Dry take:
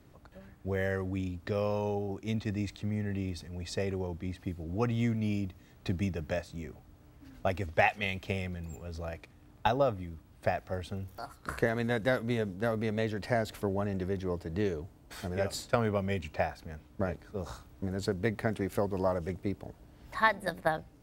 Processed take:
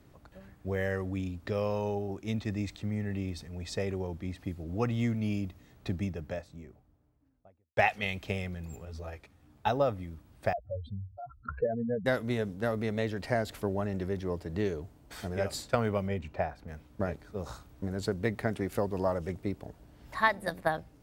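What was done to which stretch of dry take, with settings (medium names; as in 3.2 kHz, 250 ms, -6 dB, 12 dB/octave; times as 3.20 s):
5.44–7.77 s: studio fade out
8.85–9.68 s: three-phase chorus
10.53–12.06 s: spectral contrast enhancement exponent 3.8
16.08–16.68 s: treble shelf 2.4 kHz -11.5 dB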